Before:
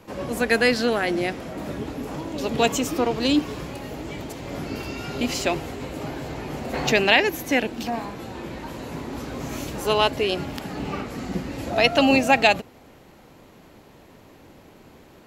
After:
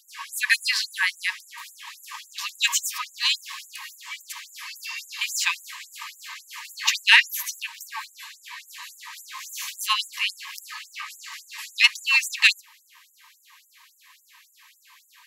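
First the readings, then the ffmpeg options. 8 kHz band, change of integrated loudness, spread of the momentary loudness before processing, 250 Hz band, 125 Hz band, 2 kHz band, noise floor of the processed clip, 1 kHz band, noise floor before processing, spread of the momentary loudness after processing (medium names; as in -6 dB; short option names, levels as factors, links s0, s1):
+6.0 dB, +1.5 dB, 16 LU, under -40 dB, under -40 dB, +2.5 dB, -61 dBFS, -9.5 dB, -50 dBFS, 20 LU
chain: -af "asuperstop=centerf=1400:order=12:qfactor=5.4,acontrast=60,afftfilt=real='re*gte(b*sr/1024,860*pow(6900/860,0.5+0.5*sin(2*PI*3.6*pts/sr)))':imag='im*gte(b*sr/1024,860*pow(6900/860,0.5+0.5*sin(2*PI*3.6*pts/sr)))':win_size=1024:overlap=0.75"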